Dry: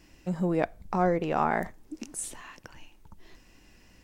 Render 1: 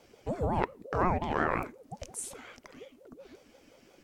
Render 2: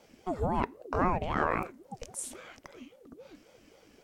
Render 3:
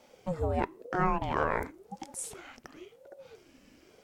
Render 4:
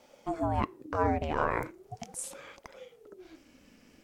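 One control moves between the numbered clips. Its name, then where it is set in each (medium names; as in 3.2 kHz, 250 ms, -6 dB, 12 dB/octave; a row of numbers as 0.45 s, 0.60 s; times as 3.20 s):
ring modulator with a swept carrier, at: 5.6 Hz, 3.7 Hz, 0.96 Hz, 0.4 Hz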